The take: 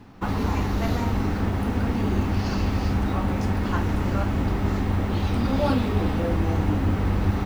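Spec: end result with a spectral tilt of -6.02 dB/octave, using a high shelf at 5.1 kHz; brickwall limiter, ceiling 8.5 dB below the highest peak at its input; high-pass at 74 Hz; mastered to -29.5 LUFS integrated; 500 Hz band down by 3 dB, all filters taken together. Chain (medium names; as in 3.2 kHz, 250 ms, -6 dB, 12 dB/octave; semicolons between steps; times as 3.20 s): high-pass 74 Hz; peaking EQ 500 Hz -4 dB; treble shelf 5.1 kHz +8 dB; trim -0.5 dB; peak limiter -20.5 dBFS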